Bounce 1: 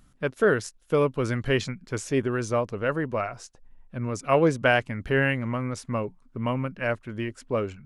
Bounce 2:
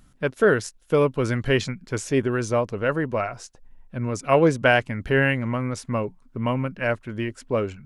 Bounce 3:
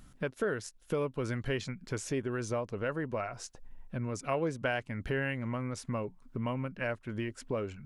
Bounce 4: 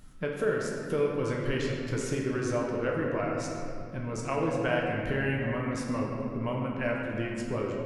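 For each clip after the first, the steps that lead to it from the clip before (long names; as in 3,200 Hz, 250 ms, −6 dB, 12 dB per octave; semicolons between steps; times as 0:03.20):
notch filter 1,200 Hz, Q 20; level +3 dB
downward compressor 2.5 to 1, threshold −36 dBFS, peak gain reduction 15.5 dB
convolution reverb RT60 2.7 s, pre-delay 7 ms, DRR −2 dB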